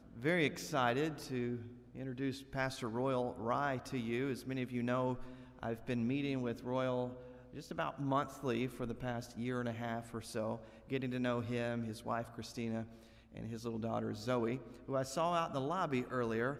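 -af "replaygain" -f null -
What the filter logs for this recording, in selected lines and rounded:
track_gain = +18.8 dB
track_peak = 0.070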